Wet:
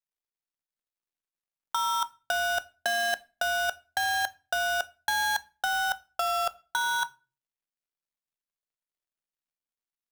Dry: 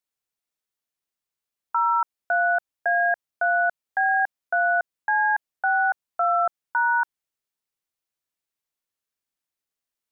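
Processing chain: switching dead time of 0.15 ms; on a send at -20 dB: reverb RT60 0.35 s, pre-delay 5 ms; on the sum: negative-ratio compressor -27 dBFS, ratio -1

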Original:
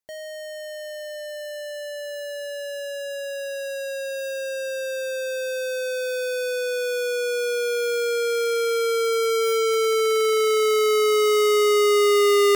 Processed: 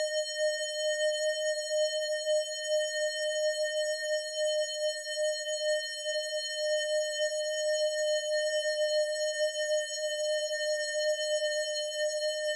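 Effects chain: Paulstretch 46×, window 0.25 s, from 0.59; speaker cabinet 390–9600 Hz, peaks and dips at 1300 Hz -7 dB, 2300 Hz -3 dB, 3700 Hz +8 dB, 6900 Hz +8 dB; gain +3.5 dB

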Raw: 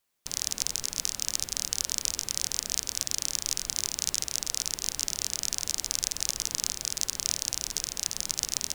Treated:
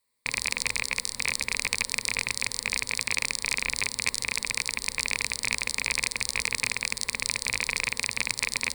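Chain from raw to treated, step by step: rattling part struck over -46 dBFS, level -10 dBFS; ripple EQ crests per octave 0.95, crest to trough 13 dB; gain -2 dB

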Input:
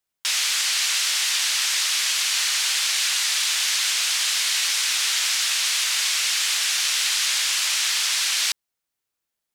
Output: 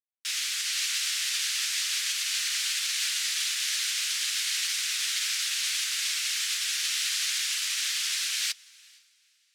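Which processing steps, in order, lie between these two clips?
HPF 1400 Hz 24 dB/oct; diffused feedback echo 0.476 s, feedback 41%, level -10 dB; upward expander 2.5:1, over -35 dBFS; gain -6 dB

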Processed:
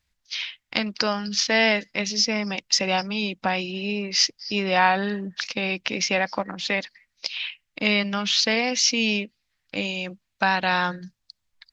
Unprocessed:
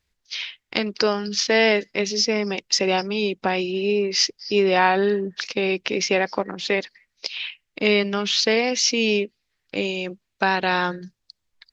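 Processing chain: bell 400 Hz -12 dB 0.5 oct

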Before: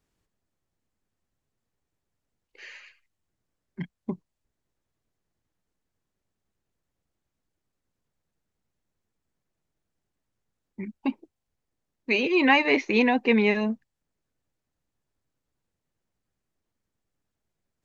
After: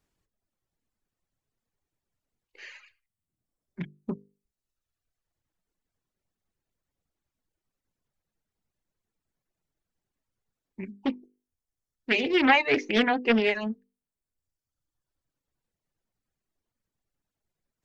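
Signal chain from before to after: reverb removal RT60 1.3 s; notches 50/100/150/200/250/300/350/400/450/500 Hz; Doppler distortion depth 0.4 ms

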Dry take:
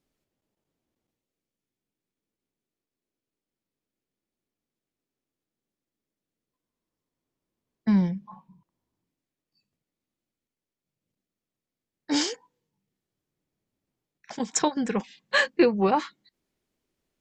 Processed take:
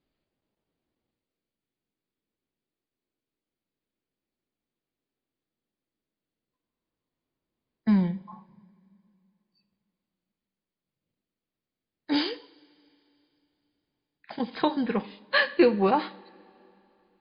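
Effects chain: two-slope reverb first 0.51 s, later 3.1 s, from -20 dB, DRR 12.5 dB; MP3 32 kbps 11025 Hz

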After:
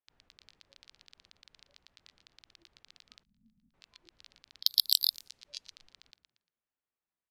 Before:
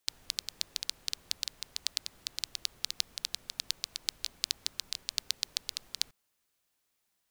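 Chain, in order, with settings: vibrato 2.5 Hz 15 cents; 4.61–5.03 sample leveller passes 3; frequency-shifting echo 0.116 s, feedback 47%, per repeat +52 Hz, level -14.5 dB; in parallel at +1.5 dB: negative-ratio compressor -39 dBFS, ratio -0.5; on the sum: limiter -10.5 dBFS, peak gain reduction 6 dB; spectral noise reduction 22 dB; sample leveller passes 1; 3.23–3.74 EQ curve 130 Hz 0 dB, 220 Hz +12 dB, 370 Hz -28 dB; low-pass opened by the level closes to 1900 Hz, open at -37.5 dBFS; high shelf 6200 Hz +11 dB; gain +2.5 dB

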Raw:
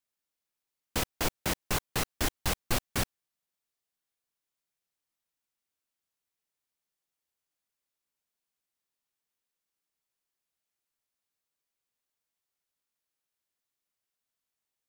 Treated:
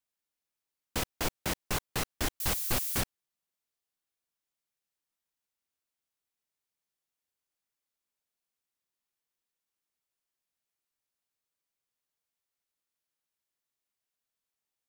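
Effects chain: 2.4–3.01 switching spikes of -27.5 dBFS; gain -2 dB

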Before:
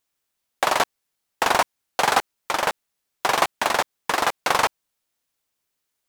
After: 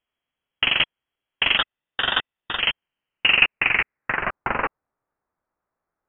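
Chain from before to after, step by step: high-pass sweep 310 Hz -> 2500 Hz, 2.5–4.32; 1.57–2.6 ring modulator 1300 Hz; inverted band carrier 3600 Hz; gain -1 dB

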